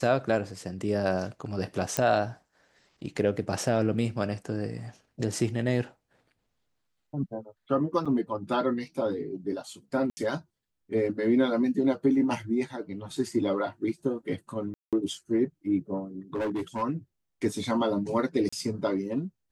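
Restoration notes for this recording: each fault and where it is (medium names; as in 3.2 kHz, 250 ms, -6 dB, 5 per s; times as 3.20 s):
1.97 s: pop -8 dBFS
8.05–8.06 s: dropout 5.9 ms
10.10–10.17 s: dropout 70 ms
14.74–14.93 s: dropout 187 ms
16.35–16.83 s: clipped -26.5 dBFS
18.49–18.52 s: dropout 35 ms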